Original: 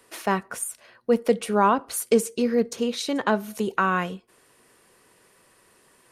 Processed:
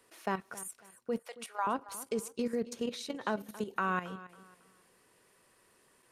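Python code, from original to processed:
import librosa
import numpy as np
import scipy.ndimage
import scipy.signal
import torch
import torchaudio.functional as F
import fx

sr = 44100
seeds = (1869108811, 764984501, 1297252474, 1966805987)

y = fx.highpass(x, sr, hz=750.0, slope=24, at=(1.19, 1.67))
y = fx.level_steps(y, sr, step_db=12)
y = fx.echo_feedback(y, sr, ms=275, feedback_pct=30, wet_db=-17.0)
y = y * 10.0 ** (-7.0 / 20.0)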